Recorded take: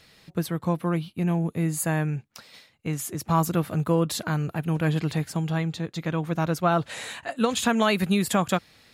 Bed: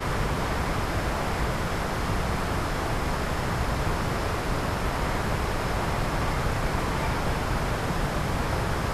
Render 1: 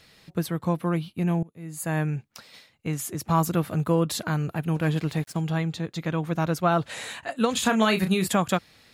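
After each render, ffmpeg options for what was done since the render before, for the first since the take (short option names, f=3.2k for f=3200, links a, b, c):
-filter_complex "[0:a]asettb=1/sr,asplit=3[a][b][c];[a]atrim=end=4.754[d];[b]atrim=start=4.75:end=5.41,asetpts=PTS-STARTPTS,afade=t=in:d=0.004:c=qsin,afade=t=out:st=0.656:d=0.004:c=qsin,aeval=exprs='sgn(val(0))*max(abs(val(0))-0.00596,0)':c=same[e];[c]atrim=start=5.406[f];[d][e]acrossfade=d=0.004:c1=hsin:c2=qsin[g];[g][f]acrossfade=d=0.004:c1=qsin:c2=hsin,asettb=1/sr,asplit=3[h][i][j];[h]atrim=end=7.524[k];[i]atrim=start=7.52:end=8.27,asetpts=PTS-STARTPTS,afade=t=in:d=0.004:c=qsin,afade=t=out:st=0.746:d=0.004:c=qsin,asplit=2[l][m];[m]adelay=32,volume=-8dB[n];[l][n]amix=inputs=2:normalize=0,atrim=end_sample=33075[o];[j]atrim=start=8.266[p];[k][o]acrossfade=d=0.004:c1=hsin:c2=qsin[q];[q][p]acrossfade=d=0.004:c1=qsin:c2=hsin,asplit=2[r][s];[r]atrim=end=1.43,asetpts=PTS-STARTPTS,afade=t=out:st=1.426:d=0.004:c=hsin:silence=0.0749894[t];[s]atrim=start=1.43,asetpts=PTS-STARTPTS,afade=t=in:d=0.55:c=qua:silence=0.0749894[u];[t][u]concat=n=2:v=0:a=1"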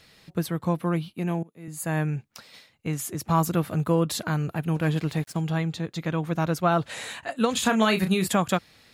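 -filter_complex "[0:a]asettb=1/sr,asplit=3[a][b][c];[a]atrim=end=1.144[d];[b]atrim=start=1.14:end=1.68,asetpts=PTS-STARTPTS,afade=t=in:d=0.004:c=qsin,afade=t=out:st=0.536:d=0.004:c=qsin,highpass=190[e];[c]atrim=start=1.676[f];[d][e]acrossfade=d=0.004:c1=hsin:c2=qsin[g];[g][f]acrossfade=d=0.004:c1=qsin:c2=hsin"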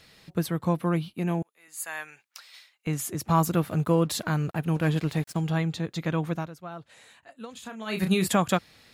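-filter_complex "[0:a]asettb=1/sr,asplit=3[a][b][c];[a]atrim=end=1.424[d];[b]atrim=start=1.42:end=2.87,asetpts=PTS-STARTPTS,afade=t=in:d=0.004:c=qsin,afade=t=out:st=1.446:d=0.004:c=qsin,highpass=1.2k[e];[c]atrim=start=2.866[f];[d][e]acrossfade=d=0.004:c1=hsin:c2=qsin[g];[g][f]acrossfade=d=0.004:c1=qsin:c2=hsin,asettb=1/sr,asplit=3[h][i][j];[h]atrim=end=3.464[k];[i]atrim=start=3.46:end=5.49,asetpts=PTS-STARTPTS,afade=t=in:d=0.004:c=qsin,afade=t=out:st=2.026:d=0.004:c=qsin,aeval=exprs='sgn(val(0))*max(abs(val(0))-0.00224,0)':c=same[l];[j]atrim=start=5.486[m];[k][l]acrossfade=d=0.004:c1=hsin:c2=qsin[n];[n][m]acrossfade=d=0.004:c1=qsin:c2=hsin,asplit=3[o][p][q];[o]atrim=end=6.5,asetpts=PTS-STARTPTS,afade=t=out:st=6.27:d=0.23:silence=0.133352[r];[p]atrim=start=6.5:end=7.85,asetpts=PTS-STARTPTS,volume=-17.5dB[s];[q]atrim=start=7.85,asetpts=PTS-STARTPTS,afade=t=in:d=0.23:silence=0.133352[t];[r][s][t]concat=n=3:v=0:a=1"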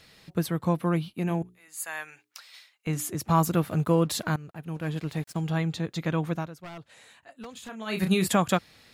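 -filter_complex "[0:a]asettb=1/sr,asplit=3[a][b][c];[a]atrim=end=1.274[d];[b]atrim=start=1.27:end=3.09,asetpts=PTS-STARTPTS,afade=t=in:d=0.004:c=qsin,afade=t=out:st=1.816:d=0.004:c=qsin,bandreject=f=60:t=h:w=6,bandreject=f=120:t=h:w=6,bandreject=f=180:t=h:w=6,bandreject=f=240:t=h:w=6,bandreject=f=300:t=h:w=6,bandreject=f=360:t=h:w=6,bandreject=f=420:t=h:w=6[e];[c]atrim=start=3.086[f];[d][e]acrossfade=d=0.004:c1=hsin:c2=qsin[g];[g][f]acrossfade=d=0.004:c1=qsin:c2=hsin,asettb=1/sr,asplit=3[h][i][j];[h]atrim=end=6.594[k];[i]atrim=start=6.59:end=7.69,asetpts=PTS-STARTPTS,afade=t=in:d=0.004:c=qsin,afade=t=out:st=1.096:d=0.004:c=qsin,aeval=exprs='0.0188*(abs(mod(val(0)/0.0188+3,4)-2)-1)':c=same[l];[j]atrim=start=7.686[m];[k][l]acrossfade=d=0.004:c1=hsin:c2=qsin[n];[n][m]acrossfade=d=0.004:c1=qsin:c2=hsin,asplit=2[o][p];[o]atrim=end=4.36,asetpts=PTS-STARTPTS,afade=t=out:st=4.356:d=0.004:c=hsin:silence=0.141254[q];[p]atrim=start=4.36,asetpts=PTS-STARTPTS,afade=t=in:d=1.38:silence=0.141254[r];[q][r]concat=n=2:v=0:a=1"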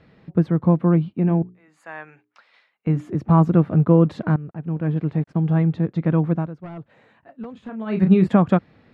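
-af "lowpass=1.8k,equalizer=f=200:w=0.4:g=10"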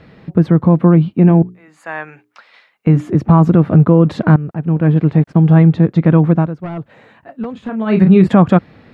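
-af "alimiter=level_in=10.5dB:limit=-1dB:release=50:level=0:latency=1"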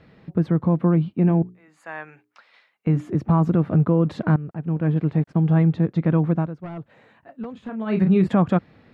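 -af "volume=-9dB"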